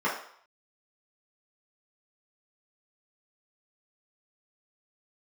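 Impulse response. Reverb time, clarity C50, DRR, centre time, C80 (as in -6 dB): 0.60 s, 5.5 dB, -7.5 dB, 33 ms, 9.5 dB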